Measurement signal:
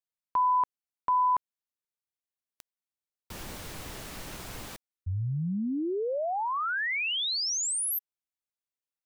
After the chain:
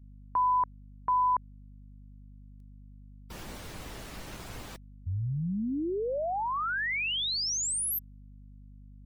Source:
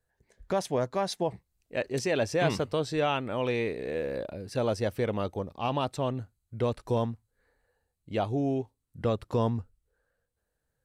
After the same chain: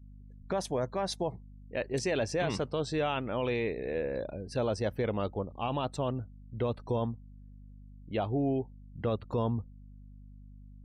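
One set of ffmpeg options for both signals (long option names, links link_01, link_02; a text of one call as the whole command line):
ffmpeg -i in.wav -af "alimiter=limit=-21dB:level=0:latency=1:release=15,aeval=exprs='val(0)+0.00398*(sin(2*PI*50*n/s)+sin(2*PI*2*50*n/s)/2+sin(2*PI*3*50*n/s)/3+sin(2*PI*4*50*n/s)/4+sin(2*PI*5*50*n/s)/5)':channel_layout=same,afftdn=noise_reduction=28:noise_floor=-52,volume=-1dB" out.wav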